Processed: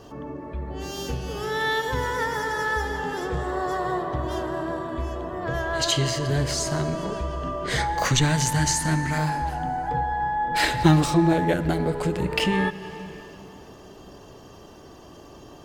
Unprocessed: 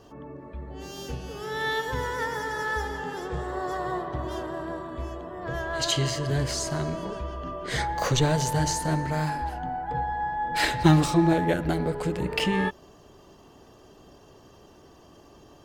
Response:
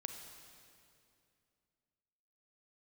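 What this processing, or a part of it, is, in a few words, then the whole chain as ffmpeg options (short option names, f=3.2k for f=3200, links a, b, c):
compressed reverb return: -filter_complex "[0:a]asettb=1/sr,asplit=3[a][b][c];[a]atrim=end=8.054[d];[b]atrim=start=8.05:end=9.18,asetpts=PTS-STARTPTS,afade=t=in:d=0.004:c=qsin,afade=t=out:st=1.126:d=0.004:c=qsin,equalizer=f=250:t=o:w=1:g=4,equalizer=f=500:t=o:w=1:g=-10,equalizer=f=2k:t=o:w=1:g=6,equalizer=f=8k:t=o:w=1:g=5[e];[c]atrim=start=9.176[f];[d][e]acrossfade=d=0.004:c1=hsin:c2=qsin[g];[g][f]acrossfade=d=0.004:c1=qsin:c2=hsin,asplit=2[h][i];[1:a]atrim=start_sample=2205[j];[i][j]afir=irnorm=-1:irlink=0,acompressor=threshold=-35dB:ratio=6,volume=3.5dB[k];[h][k]amix=inputs=2:normalize=0"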